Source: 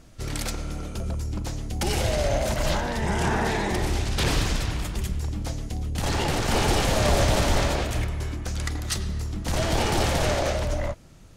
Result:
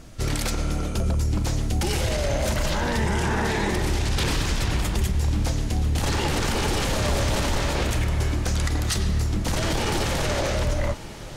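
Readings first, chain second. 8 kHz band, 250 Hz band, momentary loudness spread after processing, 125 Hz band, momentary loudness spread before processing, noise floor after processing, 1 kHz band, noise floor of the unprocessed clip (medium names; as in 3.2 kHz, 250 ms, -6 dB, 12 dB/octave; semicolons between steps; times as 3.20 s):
+1.5 dB, +1.5 dB, 2 LU, +2.5 dB, 10 LU, -35 dBFS, -1.0 dB, -47 dBFS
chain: dynamic bell 690 Hz, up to -6 dB, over -42 dBFS, Q 3.8; peak limiter -22 dBFS, peak gain reduction 10.5 dB; on a send: echo that smears into a reverb 1167 ms, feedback 48%, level -15.5 dB; on the sum: trim +6.5 dB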